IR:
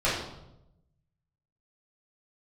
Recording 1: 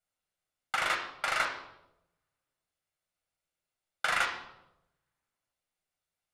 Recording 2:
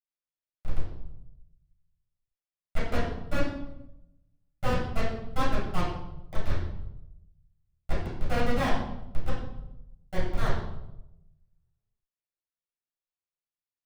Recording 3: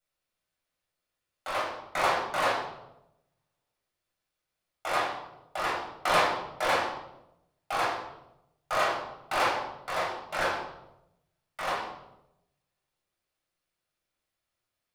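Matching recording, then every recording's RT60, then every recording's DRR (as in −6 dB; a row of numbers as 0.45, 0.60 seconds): 2; 0.90, 0.90, 0.90 seconds; 1.0, −11.5, −7.0 decibels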